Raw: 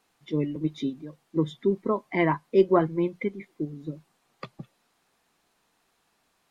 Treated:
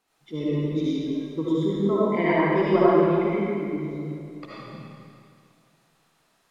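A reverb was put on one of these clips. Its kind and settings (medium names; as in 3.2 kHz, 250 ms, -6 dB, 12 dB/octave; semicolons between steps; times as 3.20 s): algorithmic reverb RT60 2.3 s, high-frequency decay 0.95×, pre-delay 35 ms, DRR -9.5 dB; trim -5.5 dB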